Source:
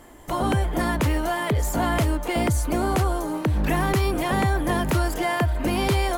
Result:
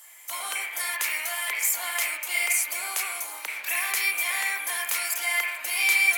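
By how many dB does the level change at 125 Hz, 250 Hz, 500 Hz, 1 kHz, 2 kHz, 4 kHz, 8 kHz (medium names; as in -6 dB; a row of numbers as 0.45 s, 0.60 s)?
under -40 dB, under -35 dB, -19.0 dB, -10.5 dB, +6.0 dB, +2.5 dB, +8.5 dB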